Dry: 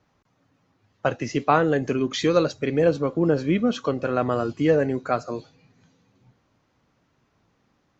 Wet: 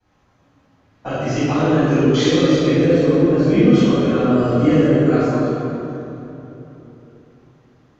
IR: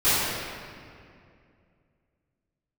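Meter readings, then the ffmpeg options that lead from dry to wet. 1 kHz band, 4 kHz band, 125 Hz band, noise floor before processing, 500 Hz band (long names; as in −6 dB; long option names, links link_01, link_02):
+1.0 dB, +7.5 dB, +10.5 dB, −68 dBFS, +5.5 dB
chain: -filter_complex "[0:a]acrossover=split=390|3000[link_01][link_02][link_03];[link_02]acompressor=threshold=-30dB:ratio=6[link_04];[link_01][link_04][link_03]amix=inputs=3:normalize=0[link_05];[1:a]atrim=start_sample=2205,asetrate=29988,aresample=44100[link_06];[link_05][link_06]afir=irnorm=-1:irlink=0,volume=-12dB"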